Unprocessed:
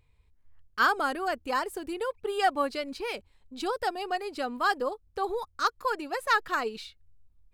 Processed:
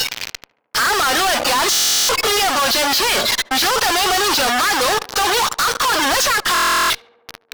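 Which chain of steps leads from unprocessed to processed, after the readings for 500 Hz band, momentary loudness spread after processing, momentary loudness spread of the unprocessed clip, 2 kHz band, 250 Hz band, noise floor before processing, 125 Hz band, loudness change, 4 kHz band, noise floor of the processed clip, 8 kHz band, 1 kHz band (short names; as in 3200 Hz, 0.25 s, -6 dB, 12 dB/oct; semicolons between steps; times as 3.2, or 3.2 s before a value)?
+9.5 dB, 4 LU, 10 LU, +13.5 dB, +9.5 dB, -66 dBFS, n/a, +14.5 dB, +23.0 dB, -62 dBFS, +30.5 dB, +11.5 dB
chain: delta modulation 32 kbps, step -27.5 dBFS; spectral noise reduction 22 dB; HPF 870 Hz 12 dB/oct; high shelf 4800 Hz +9 dB; AGC gain up to 5.5 dB; in parallel at +2 dB: limiter -21 dBFS, peak gain reduction 12 dB; on the sum: compressor 5:1, threshold -26 dBFS, peak gain reduction 13.5 dB; wow and flutter 36 cents; fuzz box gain 51 dB, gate -52 dBFS; tape echo 73 ms, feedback 83%, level -22 dB, low-pass 1700 Hz; stuck buffer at 1.72/6.53, samples 1024, times 15; gain -2 dB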